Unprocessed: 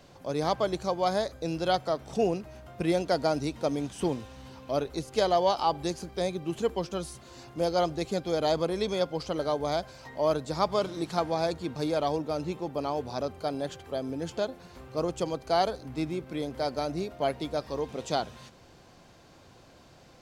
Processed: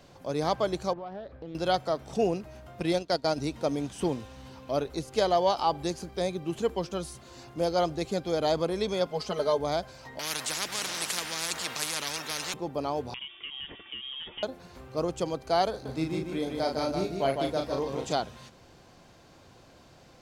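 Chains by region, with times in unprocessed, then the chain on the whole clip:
0.93–1.55 s: compression 3:1, threshold -38 dBFS + distance through air 410 m + loudspeaker Doppler distortion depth 0.33 ms
2.80–3.38 s: gate -35 dBFS, range -6 dB + peaking EQ 4.2 kHz +6.5 dB 0.95 oct + transient shaper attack -3 dB, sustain -11 dB
9.06–9.58 s: bass shelf 130 Hz -8.5 dB + comb 4.7 ms, depth 90%
10.19–12.54 s: high-pass 490 Hz + spectrum-flattening compressor 10:1
13.14–14.43 s: tilt EQ +2.5 dB/octave + compression 10:1, threshold -34 dBFS + frequency inversion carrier 3.5 kHz
15.70–18.13 s: doubling 37 ms -5 dB + delay 154 ms -4.5 dB
whole clip: none

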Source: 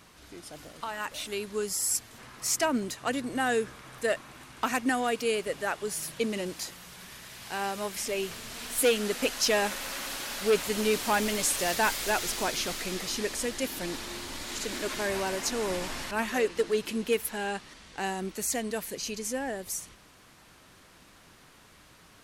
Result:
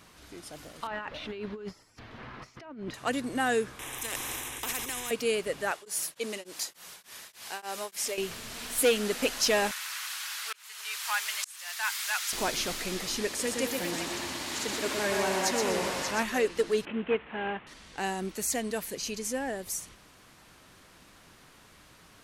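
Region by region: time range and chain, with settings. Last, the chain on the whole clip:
0.87–2.94 s: compressor with a negative ratio -38 dBFS + distance through air 310 m
3.79–5.11 s: transient shaper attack 0 dB, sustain +11 dB + static phaser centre 930 Hz, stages 8 + spectrum-flattening compressor 4:1
5.71–8.18 s: tone controls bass -14 dB, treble +4 dB + tremolo of two beating tones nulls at 3.4 Hz
9.71–12.33 s: high-pass 1.1 kHz 24 dB/octave + slow attack 561 ms
13.27–16.23 s: high-pass 79 Hz + repeats whose band climbs or falls 195 ms, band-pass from 840 Hz, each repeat 1.4 oct, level -0.5 dB + modulated delay 122 ms, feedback 34%, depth 54 cents, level -4 dB
16.85–17.67 s: CVSD coder 16 kbps + high-pass 93 Hz 6 dB/octave
whole clip: none

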